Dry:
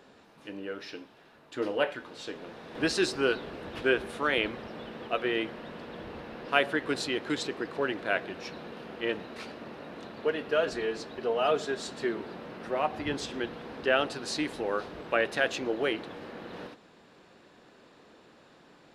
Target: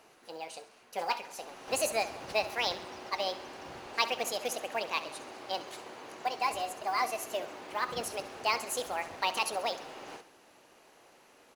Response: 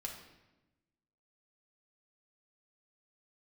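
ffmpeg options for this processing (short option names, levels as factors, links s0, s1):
-filter_complex "[0:a]equalizer=f=6500:w=6.8:g=14,asetrate=72324,aresample=44100,acrusher=bits=7:mode=log:mix=0:aa=0.000001,asplit=2[s0][s1];[s1]aecho=0:1:67|134|201|268|335:0.168|0.0907|0.049|0.0264|0.0143[s2];[s0][s2]amix=inputs=2:normalize=0,volume=0.668"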